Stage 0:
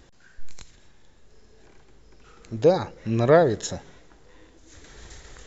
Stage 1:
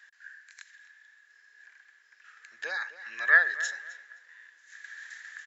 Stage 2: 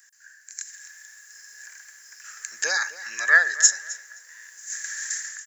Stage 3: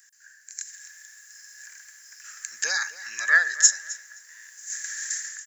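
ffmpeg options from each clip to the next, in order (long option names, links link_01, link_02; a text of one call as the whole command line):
ffmpeg -i in.wav -filter_complex "[0:a]highpass=frequency=1700:width_type=q:width=16,asplit=2[link_01][link_02];[link_02]adelay=261,lowpass=frequency=4600:poles=1,volume=-15dB,asplit=2[link_03][link_04];[link_04]adelay=261,lowpass=frequency=4600:poles=1,volume=0.26,asplit=2[link_05][link_06];[link_06]adelay=261,lowpass=frequency=4600:poles=1,volume=0.26[link_07];[link_01][link_03][link_05][link_07]amix=inputs=4:normalize=0,volume=-7dB" out.wav
ffmpeg -i in.wav -af "dynaudnorm=framelen=470:gausssize=3:maxgain=13dB,aexciter=amount=15.2:drive=4.1:freq=5400,volume=-4.5dB" out.wav
ffmpeg -i in.wav -af "equalizer=frequency=470:width_type=o:width=2.7:gain=-7.5" out.wav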